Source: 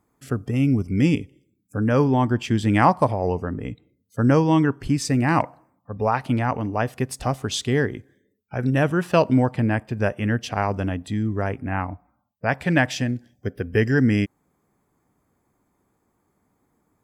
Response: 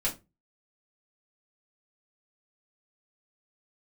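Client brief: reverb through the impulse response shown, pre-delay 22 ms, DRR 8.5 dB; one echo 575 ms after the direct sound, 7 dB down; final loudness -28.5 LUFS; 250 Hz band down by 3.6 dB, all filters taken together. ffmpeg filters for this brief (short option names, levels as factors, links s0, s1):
-filter_complex "[0:a]equalizer=f=250:t=o:g=-4.5,aecho=1:1:575:0.447,asplit=2[s0][s1];[1:a]atrim=start_sample=2205,adelay=22[s2];[s1][s2]afir=irnorm=-1:irlink=0,volume=0.178[s3];[s0][s3]amix=inputs=2:normalize=0,volume=0.531"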